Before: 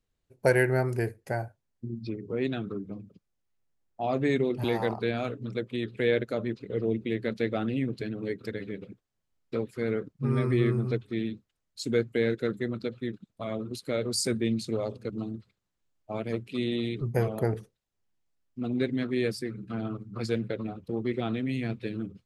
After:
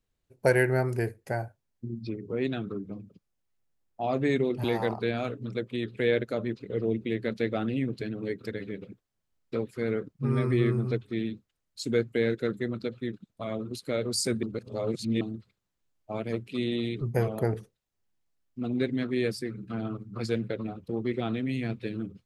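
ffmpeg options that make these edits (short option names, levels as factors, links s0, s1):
-filter_complex "[0:a]asplit=3[s0][s1][s2];[s0]atrim=end=14.432[s3];[s1]atrim=start=14.428:end=15.212,asetpts=PTS-STARTPTS,areverse[s4];[s2]atrim=start=15.208[s5];[s3][s4]acrossfade=d=0.004:c1=hsin:c2=hsin[s6];[s6][s5]acrossfade=d=0.004:c1=hsin:c2=hsin"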